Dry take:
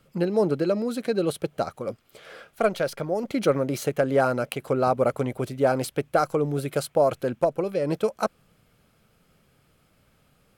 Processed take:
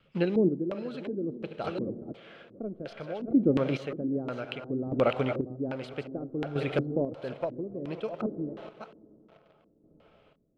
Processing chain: chunks repeated in reverse 371 ms, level -9.5 dB; reverberation RT60 5.4 s, pre-delay 63 ms, DRR 14 dB; in parallel at -8 dB: bit crusher 7-bit; on the sum: LFO low-pass square 1.4 Hz 300–3000 Hz; square tremolo 0.61 Hz, depth 60%, duty 30%; vibrato 2.5 Hz 27 cents; trim -5.5 dB

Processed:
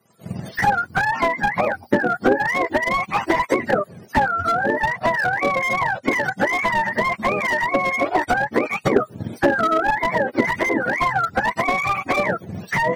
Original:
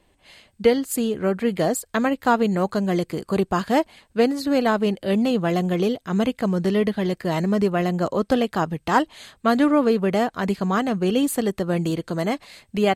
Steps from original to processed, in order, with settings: spectrum inverted on a logarithmic axis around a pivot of 620 Hz; recorder AGC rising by 50 dB/s; transient shaper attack +8 dB, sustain +4 dB; high-pass 230 Hz 12 dB/octave; slew-rate limiter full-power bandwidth 200 Hz

